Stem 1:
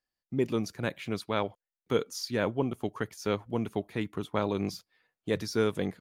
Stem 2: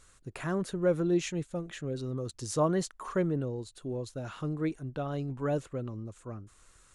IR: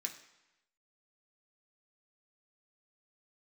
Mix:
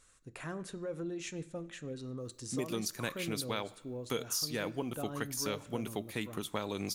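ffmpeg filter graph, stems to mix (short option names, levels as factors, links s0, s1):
-filter_complex "[0:a]crystalizer=i=4:c=0,adelay=2200,volume=0.596,asplit=2[s0][s1];[s1]volume=0.282[s2];[1:a]alimiter=level_in=1.12:limit=0.0631:level=0:latency=1:release=127,volume=0.891,volume=0.422,asplit=2[s3][s4];[s4]volume=0.668[s5];[2:a]atrim=start_sample=2205[s6];[s2][s5]amix=inputs=2:normalize=0[s7];[s7][s6]afir=irnorm=-1:irlink=0[s8];[s0][s3][s8]amix=inputs=3:normalize=0,acompressor=threshold=0.0282:ratio=6"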